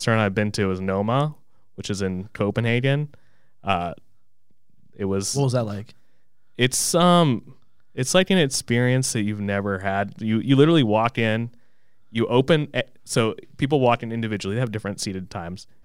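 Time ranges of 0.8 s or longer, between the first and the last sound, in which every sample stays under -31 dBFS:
3.93–5.00 s

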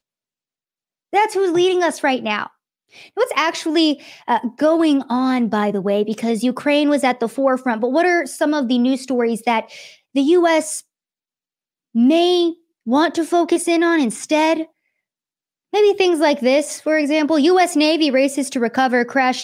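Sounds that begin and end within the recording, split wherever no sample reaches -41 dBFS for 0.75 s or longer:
1.13–10.81 s
11.95–14.66 s

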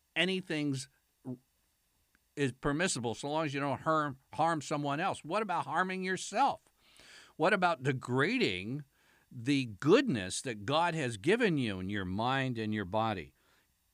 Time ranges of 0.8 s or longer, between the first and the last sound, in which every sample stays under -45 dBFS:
1.35–2.37 s

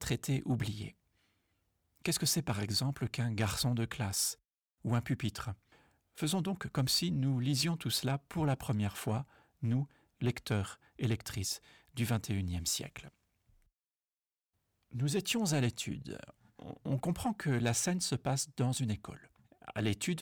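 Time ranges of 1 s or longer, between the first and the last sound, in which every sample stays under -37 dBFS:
0.88–2.05 s
12.99–14.94 s

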